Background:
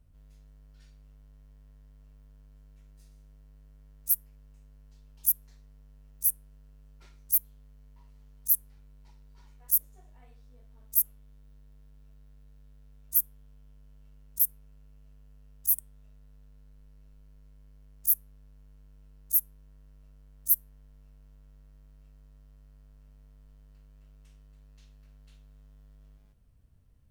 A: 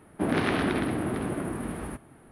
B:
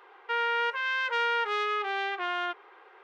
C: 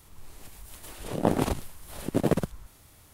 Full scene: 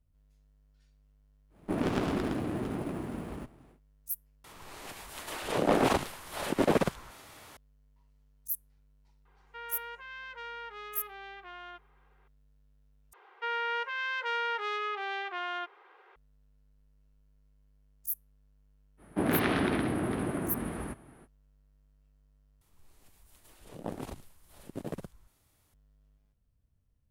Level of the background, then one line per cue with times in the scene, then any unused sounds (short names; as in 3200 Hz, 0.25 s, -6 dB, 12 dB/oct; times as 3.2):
background -10.5 dB
1.49 add A -4 dB, fades 0.10 s + running maximum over 17 samples
4.44 replace with C -6.5 dB + overdrive pedal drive 25 dB, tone 2300 Hz, clips at -7 dBFS
9.25 add B -15 dB
13.13 replace with B -4.5 dB + HPF 280 Hz
18.97 add A -2 dB, fades 0.05 s
22.61 replace with C -14.5 dB